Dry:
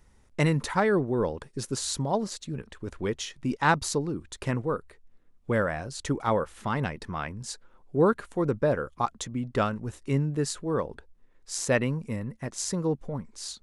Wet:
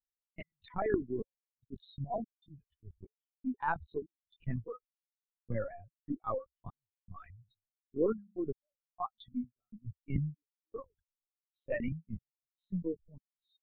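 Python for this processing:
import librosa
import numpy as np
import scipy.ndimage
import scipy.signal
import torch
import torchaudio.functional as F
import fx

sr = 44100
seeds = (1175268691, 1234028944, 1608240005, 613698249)

p1 = fx.bin_expand(x, sr, power=3.0)
p2 = scipy.signal.sosfilt(scipy.signal.butter(2, 83.0, 'highpass', fs=sr, output='sos'), p1)
p3 = fx.peak_eq(p2, sr, hz=180.0, db=-10.5, octaves=1.7, at=(4.64, 5.51))
p4 = fx.hum_notches(p3, sr, base_hz=50, count=4, at=(7.35, 8.63))
p5 = fx.over_compress(p4, sr, threshold_db=-37.0, ratio=-1.0)
p6 = p4 + (p5 * librosa.db_to_amplitude(2.5))
p7 = fx.step_gate(p6, sr, bpm=74, pattern='xx.xxx..x', floor_db=-60.0, edge_ms=4.5)
p8 = fx.air_absorb(p7, sr, metres=480.0)
p9 = fx.lpc_vocoder(p8, sr, seeds[0], excitation='pitch_kept', order=16)
y = p9 * librosa.db_to_amplitude(-4.5)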